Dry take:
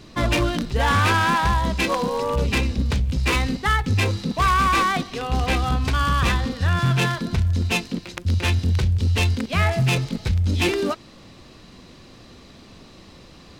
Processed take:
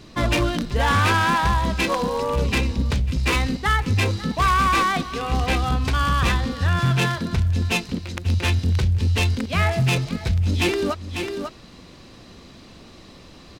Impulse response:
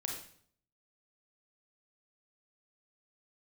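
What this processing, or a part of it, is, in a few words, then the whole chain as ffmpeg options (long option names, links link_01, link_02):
ducked delay: -filter_complex "[0:a]asplit=3[link_01][link_02][link_03];[link_02]adelay=546,volume=-6dB[link_04];[link_03]apad=whole_len=623557[link_05];[link_04][link_05]sidechaincompress=threshold=-36dB:ratio=6:attack=46:release=272[link_06];[link_01][link_06]amix=inputs=2:normalize=0"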